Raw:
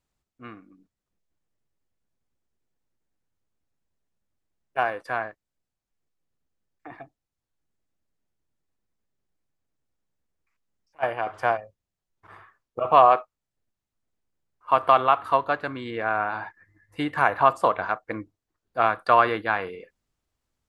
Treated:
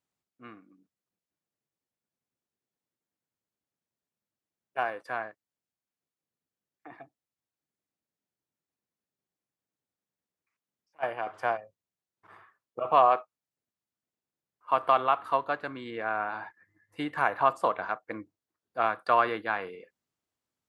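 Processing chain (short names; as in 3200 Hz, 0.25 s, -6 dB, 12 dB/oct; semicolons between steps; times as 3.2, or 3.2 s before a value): HPF 140 Hz 12 dB/oct; gain -5.5 dB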